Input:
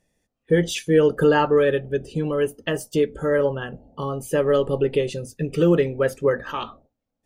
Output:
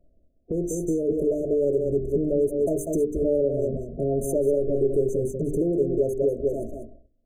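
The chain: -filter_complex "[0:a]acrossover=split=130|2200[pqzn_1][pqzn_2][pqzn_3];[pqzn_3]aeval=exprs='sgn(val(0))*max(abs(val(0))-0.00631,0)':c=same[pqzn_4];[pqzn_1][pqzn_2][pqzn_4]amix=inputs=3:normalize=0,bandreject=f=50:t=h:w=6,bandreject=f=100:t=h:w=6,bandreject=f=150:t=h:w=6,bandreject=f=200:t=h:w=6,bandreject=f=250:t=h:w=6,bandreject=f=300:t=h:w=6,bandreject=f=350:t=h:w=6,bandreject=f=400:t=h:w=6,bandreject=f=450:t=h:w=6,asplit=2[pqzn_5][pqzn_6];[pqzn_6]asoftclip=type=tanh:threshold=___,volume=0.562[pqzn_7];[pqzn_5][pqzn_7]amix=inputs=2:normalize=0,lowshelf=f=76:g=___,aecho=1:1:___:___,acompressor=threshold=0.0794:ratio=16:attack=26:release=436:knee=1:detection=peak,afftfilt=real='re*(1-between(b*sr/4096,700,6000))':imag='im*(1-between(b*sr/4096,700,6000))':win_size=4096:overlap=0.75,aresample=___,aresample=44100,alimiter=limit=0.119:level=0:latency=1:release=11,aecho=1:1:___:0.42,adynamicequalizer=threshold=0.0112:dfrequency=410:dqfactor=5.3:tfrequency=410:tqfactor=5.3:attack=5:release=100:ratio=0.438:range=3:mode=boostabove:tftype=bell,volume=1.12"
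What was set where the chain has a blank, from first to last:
0.0668, 11.5, 194, 0.398, 32000, 3.1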